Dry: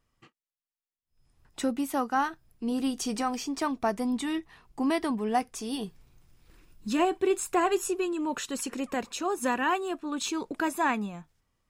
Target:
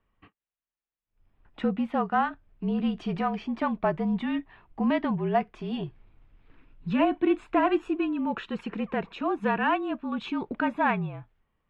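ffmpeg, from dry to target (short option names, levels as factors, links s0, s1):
-af "afreqshift=-41,adynamicsmooth=sensitivity=0.5:basefreq=2800,highshelf=f=4400:t=q:w=1.5:g=-12,volume=1.26"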